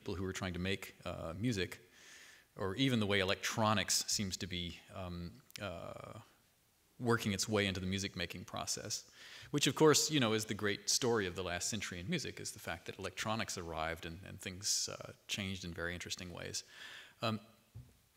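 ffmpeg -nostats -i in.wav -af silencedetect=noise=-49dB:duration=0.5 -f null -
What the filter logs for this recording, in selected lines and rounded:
silence_start: 6.22
silence_end: 7.00 | silence_duration: 0.78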